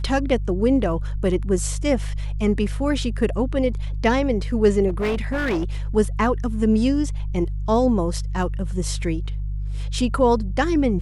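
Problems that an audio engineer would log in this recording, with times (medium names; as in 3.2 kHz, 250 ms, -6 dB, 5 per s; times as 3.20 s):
hum 50 Hz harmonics 3 -26 dBFS
4.88–5.64 s: clipped -19 dBFS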